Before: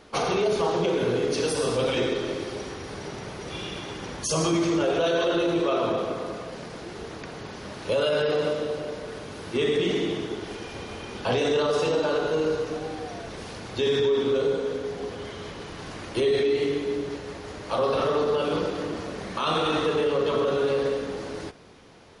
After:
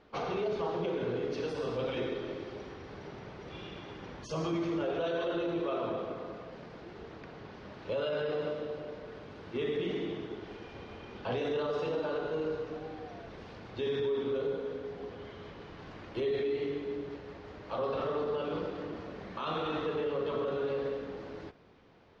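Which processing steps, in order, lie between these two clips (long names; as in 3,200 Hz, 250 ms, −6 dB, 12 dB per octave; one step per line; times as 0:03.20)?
high-frequency loss of the air 210 metres
level −8.5 dB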